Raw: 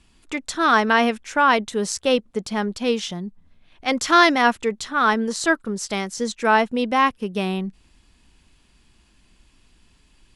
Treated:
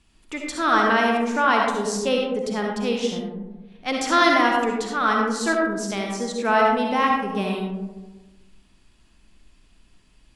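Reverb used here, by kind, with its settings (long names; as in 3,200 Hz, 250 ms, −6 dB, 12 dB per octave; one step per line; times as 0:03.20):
comb and all-pass reverb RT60 1.2 s, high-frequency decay 0.3×, pre-delay 25 ms, DRR −0.5 dB
level −4.5 dB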